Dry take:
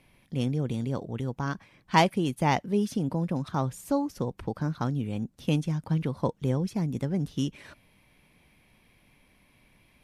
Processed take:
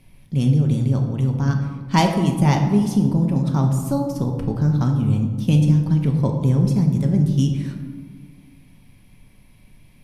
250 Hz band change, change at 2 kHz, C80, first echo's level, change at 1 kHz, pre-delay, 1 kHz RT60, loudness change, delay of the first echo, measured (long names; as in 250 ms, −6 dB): +10.0 dB, +2.0 dB, 7.5 dB, no echo audible, +3.0 dB, 3 ms, 1.5 s, +10.0 dB, no echo audible